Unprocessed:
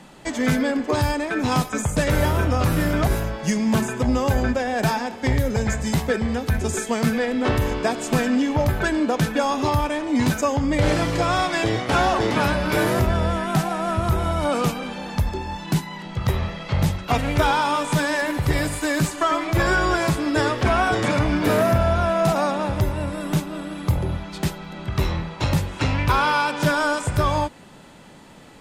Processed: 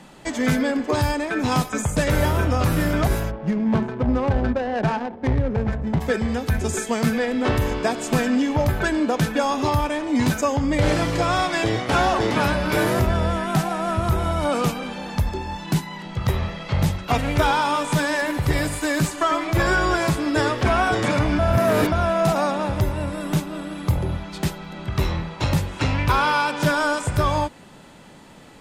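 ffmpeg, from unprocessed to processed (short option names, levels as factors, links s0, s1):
-filter_complex "[0:a]asplit=3[s0][s1][s2];[s0]afade=t=out:st=3.3:d=0.02[s3];[s1]adynamicsmooth=sensitivity=1:basefreq=560,afade=t=in:st=3.3:d=0.02,afade=t=out:st=6:d=0.02[s4];[s2]afade=t=in:st=6:d=0.02[s5];[s3][s4][s5]amix=inputs=3:normalize=0,asplit=3[s6][s7][s8];[s6]atrim=end=21.392[s9];[s7]atrim=start=21.388:end=21.922,asetpts=PTS-STARTPTS,areverse[s10];[s8]atrim=start=21.918[s11];[s9][s10]acrossfade=d=0.004:c1=hsin:c2=hsin[s12];[s12][s11]acrossfade=d=0.004:c1=hsin:c2=hsin"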